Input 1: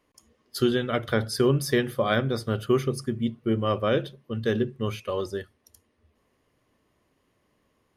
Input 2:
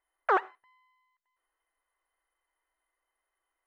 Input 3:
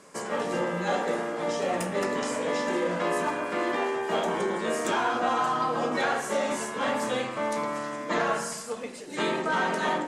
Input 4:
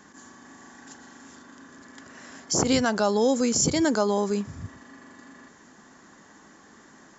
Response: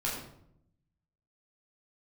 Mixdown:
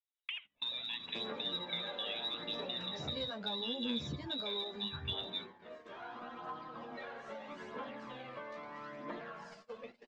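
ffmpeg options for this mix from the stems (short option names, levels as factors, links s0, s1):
-filter_complex "[0:a]acontrast=56,alimiter=limit=0.237:level=0:latency=1,volume=0.178[s0];[1:a]acompressor=threshold=0.0447:ratio=8,highpass=1100,volume=0.668[s1];[2:a]acompressor=threshold=0.0316:ratio=10,flanger=delay=8.4:depth=8:regen=36:speed=0.33:shape=sinusoidal,adelay=1000,volume=1.33,afade=t=out:st=2.94:d=0.36:silence=0.421697,afade=t=in:st=5.85:d=0.44:silence=0.446684[s2];[3:a]equalizer=f=110:w=0.51:g=9,asplit=2[s3][s4];[s4]adelay=11,afreqshift=-1.1[s5];[s3][s5]amix=inputs=2:normalize=1,adelay=450,volume=0.251[s6];[s2][s6]amix=inputs=2:normalize=0,lowpass=f=4300:w=0.5412,lowpass=f=4300:w=1.3066,acompressor=threshold=0.00501:ratio=2,volume=1[s7];[s0][s1]amix=inputs=2:normalize=0,lowpass=f=3400:t=q:w=0.5098,lowpass=f=3400:t=q:w=0.6013,lowpass=f=3400:t=q:w=0.9,lowpass=f=3400:t=q:w=2.563,afreqshift=-4000,acompressor=threshold=0.0141:ratio=20,volume=1[s8];[s7][s8]amix=inputs=2:normalize=0,agate=range=0.0447:threshold=0.00355:ratio=16:detection=peak,aphaser=in_gain=1:out_gain=1:delay=2:decay=0.42:speed=0.77:type=triangular"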